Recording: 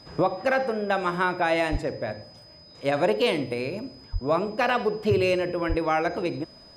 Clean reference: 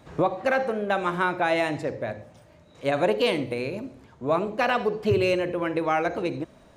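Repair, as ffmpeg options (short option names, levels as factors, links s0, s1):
-filter_complex "[0:a]bandreject=f=5000:w=30,asplit=3[s0][s1][s2];[s0]afade=t=out:st=1.71:d=0.02[s3];[s1]highpass=f=140:w=0.5412,highpass=f=140:w=1.3066,afade=t=in:st=1.71:d=0.02,afade=t=out:st=1.83:d=0.02[s4];[s2]afade=t=in:st=1.83:d=0.02[s5];[s3][s4][s5]amix=inputs=3:normalize=0,asplit=3[s6][s7][s8];[s6]afade=t=out:st=4.12:d=0.02[s9];[s7]highpass=f=140:w=0.5412,highpass=f=140:w=1.3066,afade=t=in:st=4.12:d=0.02,afade=t=out:st=4.24:d=0.02[s10];[s8]afade=t=in:st=4.24:d=0.02[s11];[s9][s10][s11]amix=inputs=3:normalize=0,asplit=3[s12][s13][s14];[s12]afade=t=out:st=5.68:d=0.02[s15];[s13]highpass=f=140:w=0.5412,highpass=f=140:w=1.3066,afade=t=in:st=5.68:d=0.02,afade=t=out:st=5.8:d=0.02[s16];[s14]afade=t=in:st=5.8:d=0.02[s17];[s15][s16][s17]amix=inputs=3:normalize=0"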